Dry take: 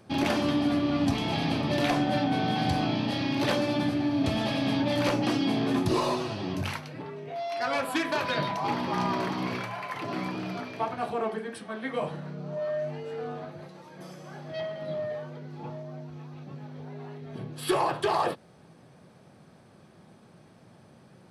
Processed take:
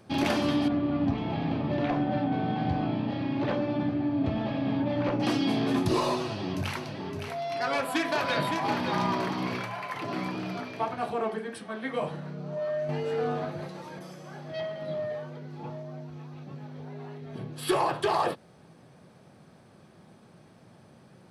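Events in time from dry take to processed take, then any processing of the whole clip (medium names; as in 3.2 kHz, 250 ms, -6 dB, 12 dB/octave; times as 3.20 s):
0.68–5.20 s: tape spacing loss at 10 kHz 35 dB
6.20–9.15 s: delay 564 ms -6.5 dB
12.89–13.99 s: gain +6.5 dB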